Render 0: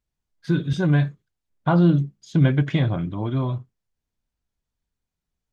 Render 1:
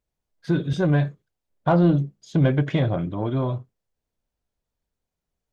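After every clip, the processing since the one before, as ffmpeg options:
-filter_complex "[0:a]equalizer=f=550:w=1.1:g=8,asplit=2[s0][s1];[s1]asoftclip=type=tanh:threshold=0.141,volume=0.562[s2];[s0][s2]amix=inputs=2:normalize=0,volume=0.562"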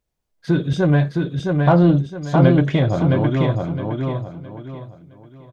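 -af "aecho=1:1:664|1328|1992|2656:0.668|0.207|0.0642|0.0199,volume=1.58"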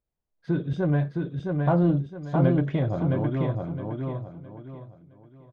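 -af "lowpass=f=1500:p=1,volume=0.422"

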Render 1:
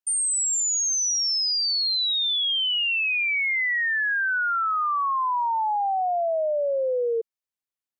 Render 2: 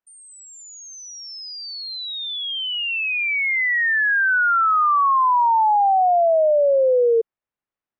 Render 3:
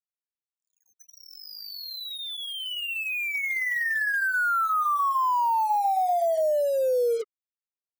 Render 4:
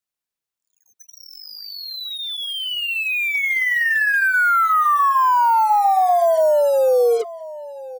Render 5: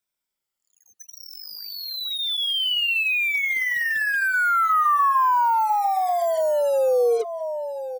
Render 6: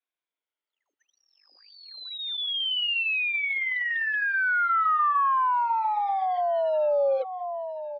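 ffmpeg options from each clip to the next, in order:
-af "lowpass=1800,volume=2.51"
-af "flanger=delay=2.8:depth=6.1:regen=-69:speed=0.45:shape=sinusoidal,acrusher=bits=5:mix=0:aa=0.5,volume=0.708"
-filter_complex "[0:a]acrossover=split=300|830|4800[s0][s1][s2][s3];[s3]alimiter=level_in=9.44:limit=0.0631:level=0:latency=1,volume=0.106[s4];[s0][s1][s2][s4]amix=inputs=4:normalize=0,asplit=2[s5][s6];[s6]adelay=1029,lowpass=f=4900:p=1,volume=0.133,asplit=2[s7][s8];[s8]adelay=1029,lowpass=f=4900:p=1,volume=0.24[s9];[s5][s7][s9]amix=inputs=3:normalize=0,volume=2.51"
-af "afftfilt=real='re*pow(10,8/40*sin(2*PI*(1.6*log(max(b,1)*sr/1024/100)/log(2)-(-0.53)*(pts-256)/sr)))':imag='im*pow(10,8/40*sin(2*PI*(1.6*log(max(b,1)*sr/1024/100)/log(2)-(-0.53)*(pts-256)/sr)))':win_size=1024:overlap=0.75,acompressor=threshold=0.0501:ratio=2,volume=1.26"
-af "highpass=f=210:t=q:w=0.5412,highpass=f=210:t=q:w=1.307,lowpass=f=3600:t=q:w=0.5176,lowpass=f=3600:t=q:w=0.7071,lowpass=f=3600:t=q:w=1.932,afreqshift=75,volume=0.631"

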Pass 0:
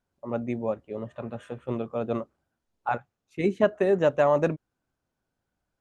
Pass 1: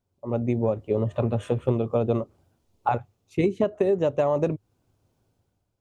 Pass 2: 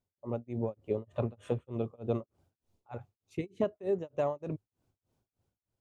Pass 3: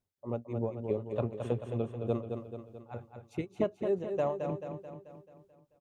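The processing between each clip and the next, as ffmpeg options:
-af "dynaudnorm=f=140:g=9:m=4.22,equalizer=f=100:t=o:w=0.67:g=12,equalizer=f=400:t=o:w=0.67:g=4,equalizer=f=1600:t=o:w=0.67:g=-9,acompressor=threshold=0.112:ratio=10"
-af "tremolo=f=3.3:d=0.99,volume=0.473"
-af "aecho=1:1:218|436|654|872|1090|1308|1526:0.473|0.251|0.133|0.0704|0.0373|0.0198|0.0105"

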